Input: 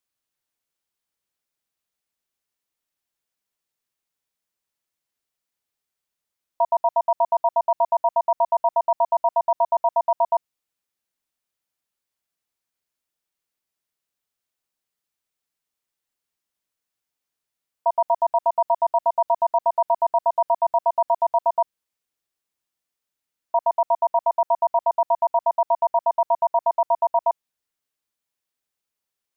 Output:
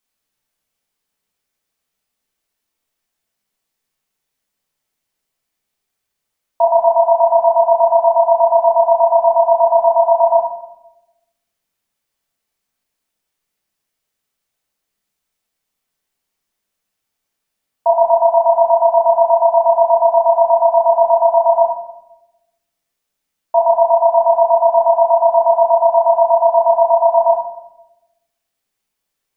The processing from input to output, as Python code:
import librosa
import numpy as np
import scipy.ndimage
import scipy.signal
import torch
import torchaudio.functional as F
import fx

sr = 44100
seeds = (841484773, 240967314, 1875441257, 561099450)

y = fx.room_shoebox(x, sr, seeds[0], volume_m3=320.0, walls='mixed', distance_m=1.5)
y = y * librosa.db_to_amplitude(4.0)